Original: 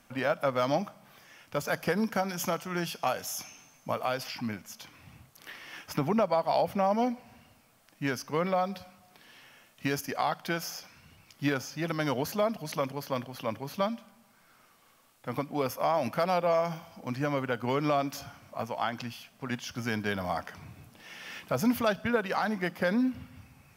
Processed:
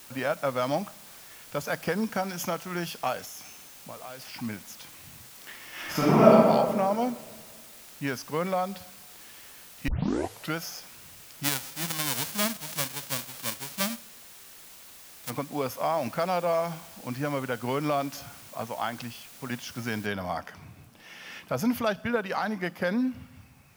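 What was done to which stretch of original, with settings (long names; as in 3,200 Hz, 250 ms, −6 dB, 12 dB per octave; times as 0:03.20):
0:03.25–0:04.34: downward compressor 2.5 to 1, threshold −43 dBFS
0:05.72–0:06.32: thrown reverb, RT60 1.8 s, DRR −10 dB
0:09.88: tape start 0.69 s
0:11.43–0:15.29: spectral envelope flattened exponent 0.1
0:20.06: noise floor change −49 dB −68 dB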